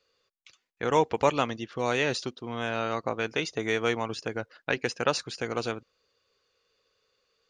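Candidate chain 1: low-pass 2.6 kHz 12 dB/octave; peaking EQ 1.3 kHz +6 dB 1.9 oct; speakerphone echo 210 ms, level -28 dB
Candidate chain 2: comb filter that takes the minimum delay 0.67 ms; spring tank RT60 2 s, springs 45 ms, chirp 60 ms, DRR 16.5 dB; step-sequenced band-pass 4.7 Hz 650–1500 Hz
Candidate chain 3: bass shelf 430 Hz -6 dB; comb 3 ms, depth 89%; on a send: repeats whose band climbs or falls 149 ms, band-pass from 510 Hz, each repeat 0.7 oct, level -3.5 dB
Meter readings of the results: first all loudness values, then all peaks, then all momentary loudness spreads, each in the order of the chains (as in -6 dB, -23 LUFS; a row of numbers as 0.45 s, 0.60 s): -27.0 LUFS, -41.0 LUFS, -28.0 LUFS; -5.5 dBFS, -19.5 dBFS, -8.5 dBFS; 10 LU, 11 LU, 9 LU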